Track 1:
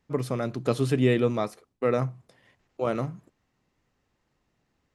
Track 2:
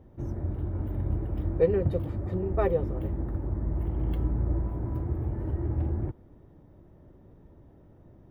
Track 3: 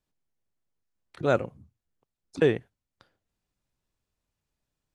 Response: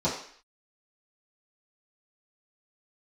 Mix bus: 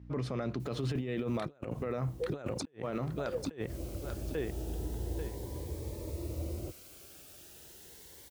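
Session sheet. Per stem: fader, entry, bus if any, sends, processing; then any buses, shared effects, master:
-7.0 dB, 0.00 s, no send, no echo send, LPF 4800 Hz 12 dB/oct; hum 60 Hz, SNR 19 dB
-12.0 dB, 0.60 s, no send, no echo send, ten-band EQ 125 Hz -7 dB, 250 Hz -6 dB, 500 Hz +10 dB, 2000 Hz -10 dB; requantised 8-bit, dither triangular; cascading phaser rising 0.35 Hz; auto duck -13 dB, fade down 0.80 s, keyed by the first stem
-1.0 dB, 0.25 s, no send, echo send -9 dB, AGC gain up to 13 dB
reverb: off
echo: feedback echo 0.841 s, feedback 20%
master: HPF 57 Hz; negative-ratio compressor -32 dBFS, ratio -0.5; limiter -25.5 dBFS, peak gain reduction 12 dB

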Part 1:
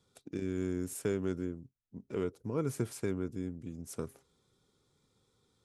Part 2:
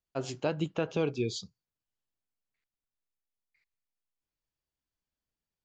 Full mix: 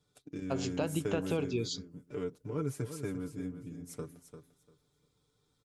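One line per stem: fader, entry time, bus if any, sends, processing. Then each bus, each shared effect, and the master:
-5.0 dB, 0.00 s, no send, echo send -10 dB, comb 6.8 ms, depth 76%
+2.0 dB, 0.35 s, no send, no echo send, compressor 2.5:1, threshold -33 dBFS, peak gain reduction 6.5 dB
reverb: off
echo: feedback echo 0.346 s, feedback 19%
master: bell 66 Hz +13.5 dB 0.43 oct

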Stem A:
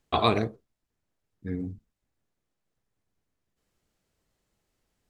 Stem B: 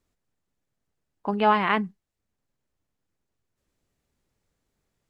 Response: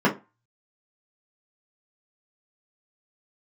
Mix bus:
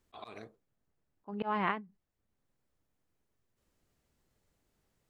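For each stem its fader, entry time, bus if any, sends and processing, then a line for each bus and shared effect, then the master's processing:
-4.0 dB, 0.00 s, no send, tilt +3.5 dB/oct; hard clip -11 dBFS, distortion -21 dB; auto duck -19 dB, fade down 1.10 s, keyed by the second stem
0.0 dB, 0.00 s, no send, ending taper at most 190 dB/s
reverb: off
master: high shelf 2600 Hz -9.5 dB; auto swell 0.37 s

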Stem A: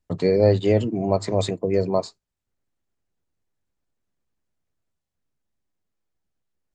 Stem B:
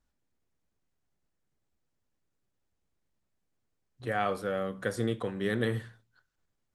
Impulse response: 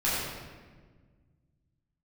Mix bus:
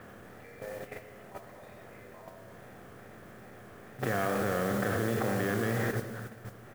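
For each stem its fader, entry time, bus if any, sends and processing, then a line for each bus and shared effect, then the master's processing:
-18.0 dB, 0.20 s, send -12 dB, HPF 720 Hz 12 dB/oct; bell 1700 Hz +12.5 dB 1.6 oct; auto duck -18 dB, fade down 1.45 s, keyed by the second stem
+1.5 dB, 0.00 s, send -16.5 dB, per-bin compression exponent 0.4; wow and flutter 100 cents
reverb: on, RT60 1.5 s, pre-delay 9 ms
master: LPF 2800 Hz 24 dB/oct; level quantiser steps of 10 dB; modulation noise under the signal 16 dB

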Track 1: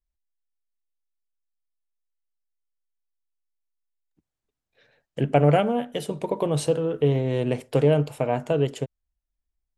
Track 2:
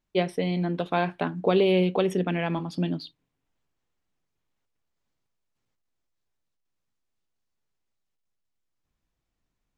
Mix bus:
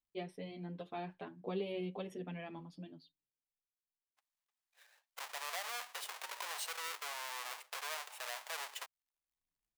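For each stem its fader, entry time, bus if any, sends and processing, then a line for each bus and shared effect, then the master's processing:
-6.0 dB, 0.00 s, no send, half-waves squared off; HPF 850 Hz 24 dB/oct; compressor 5:1, threshold -29 dBFS, peak gain reduction 13 dB
-15.0 dB, 0.00 s, no send, endless flanger 7.2 ms +2.5 Hz; auto duck -18 dB, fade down 1.75 s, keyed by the first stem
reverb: off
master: bell 1400 Hz -4 dB 0.25 oct; limiter -26.5 dBFS, peak gain reduction 10 dB

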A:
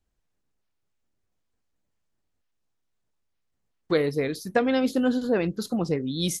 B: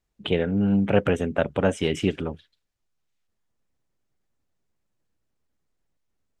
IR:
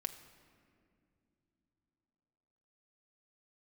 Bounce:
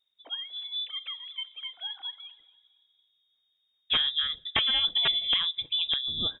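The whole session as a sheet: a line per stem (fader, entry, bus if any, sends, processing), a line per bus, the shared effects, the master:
-3.5 dB, 0.00 s, send -20.5 dB, no echo send, dry
-19.0 dB, 0.00 s, send -4 dB, echo send -17 dB, sine-wave speech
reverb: on, pre-delay 5 ms
echo: feedback echo 0.237 s, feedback 31%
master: wrapped overs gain 16.5 dB; inverted band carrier 3700 Hz

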